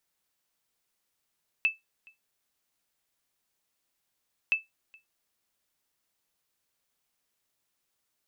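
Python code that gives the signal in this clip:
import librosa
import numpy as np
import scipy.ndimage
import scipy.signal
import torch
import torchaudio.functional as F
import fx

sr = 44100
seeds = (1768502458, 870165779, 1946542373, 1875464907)

y = fx.sonar_ping(sr, hz=2630.0, decay_s=0.17, every_s=2.87, pings=2, echo_s=0.42, echo_db=-28.5, level_db=-16.5)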